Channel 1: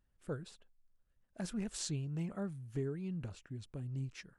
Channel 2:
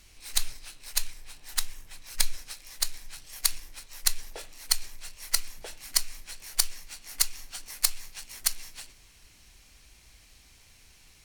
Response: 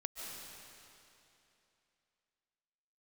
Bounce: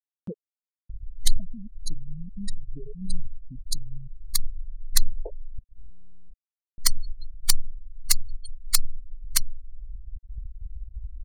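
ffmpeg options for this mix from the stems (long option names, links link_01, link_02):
-filter_complex "[0:a]highpass=190,lowshelf=frequency=310:gain=9.5,acompressor=threshold=-44dB:ratio=4,volume=2.5dB,asplit=3[link_01][link_02][link_03];[link_02]volume=-20.5dB[link_04];[1:a]acrusher=bits=4:mode=log:mix=0:aa=0.000001,lowshelf=frequency=310:gain=10.5,acontrast=46,adelay=900,volume=-3.5dB,asplit=3[link_05][link_06][link_07];[link_05]atrim=end=5.59,asetpts=PTS-STARTPTS,afade=type=out:start_time=5.586:duration=0.004:curve=hsin[link_08];[link_06]atrim=start=5.59:end=6.79,asetpts=PTS-STARTPTS,volume=0[link_09];[link_07]atrim=start=6.79,asetpts=PTS-STARTPTS,afade=type=in:duration=0.004:curve=hsin[link_10];[link_08][link_09][link_10]concat=n=3:v=0:a=1,asplit=2[link_11][link_12];[link_12]volume=-8.5dB[link_13];[link_03]apad=whole_len=535558[link_14];[link_11][link_14]sidechaincompress=threshold=-56dB:ratio=3:attack=33:release=314[link_15];[2:a]atrim=start_sample=2205[link_16];[link_04][link_13]amix=inputs=2:normalize=0[link_17];[link_17][link_16]afir=irnorm=-1:irlink=0[link_18];[link_01][link_15][link_18]amix=inputs=3:normalize=0,afftfilt=real='re*gte(hypot(re,im),0.0631)':imag='im*gte(hypot(re,im),0.0631)':win_size=1024:overlap=0.75,acompressor=mode=upward:threshold=-23dB:ratio=2.5"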